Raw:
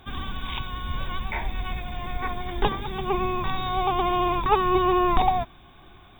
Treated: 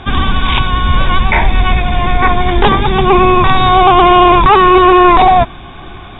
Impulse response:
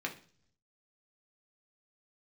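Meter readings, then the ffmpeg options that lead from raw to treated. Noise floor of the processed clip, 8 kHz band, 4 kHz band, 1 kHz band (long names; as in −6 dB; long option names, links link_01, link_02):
−31 dBFS, can't be measured, +17.0 dB, +16.5 dB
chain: -af "apsyclip=22dB,lowpass=3900,volume=-2dB"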